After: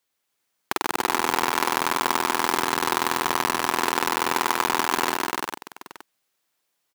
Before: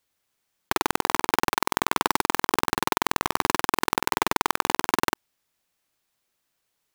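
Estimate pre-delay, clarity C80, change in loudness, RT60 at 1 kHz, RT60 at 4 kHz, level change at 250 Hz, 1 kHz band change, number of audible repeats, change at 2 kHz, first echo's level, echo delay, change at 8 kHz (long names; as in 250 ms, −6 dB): no reverb audible, no reverb audible, +1.0 dB, no reverb audible, no reverb audible, 0.0 dB, +1.5 dB, 5, +1.5 dB, −7.5 dB, 130 ms, +1.5 dB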